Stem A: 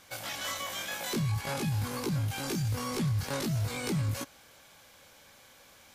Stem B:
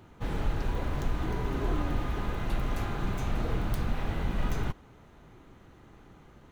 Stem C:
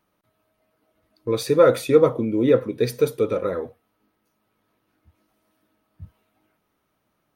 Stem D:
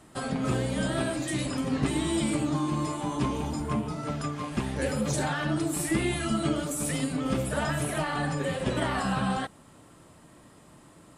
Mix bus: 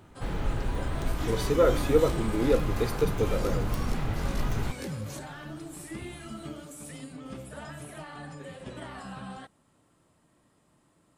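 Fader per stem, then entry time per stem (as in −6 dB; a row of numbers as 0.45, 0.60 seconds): −7.0, 0.0, −7.5, −13.0 decibels; 0.95, 0.00, 0.00, 0.00 seconds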